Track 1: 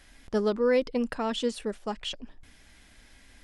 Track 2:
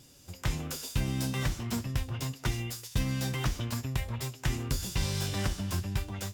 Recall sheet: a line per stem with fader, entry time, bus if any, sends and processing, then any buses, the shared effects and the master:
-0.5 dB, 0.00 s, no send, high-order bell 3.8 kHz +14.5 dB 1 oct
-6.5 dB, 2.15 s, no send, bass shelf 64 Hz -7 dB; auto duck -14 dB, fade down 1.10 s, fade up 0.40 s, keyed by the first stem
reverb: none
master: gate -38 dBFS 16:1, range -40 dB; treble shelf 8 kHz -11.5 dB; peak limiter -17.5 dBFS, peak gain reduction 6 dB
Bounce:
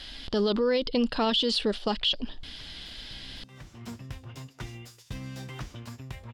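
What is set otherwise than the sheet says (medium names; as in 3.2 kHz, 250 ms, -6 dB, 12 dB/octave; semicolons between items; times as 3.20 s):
stem 1 -0.5 dB -> +9.0 dB; master: missing gate -38 dBFS 16:1, range -40 dB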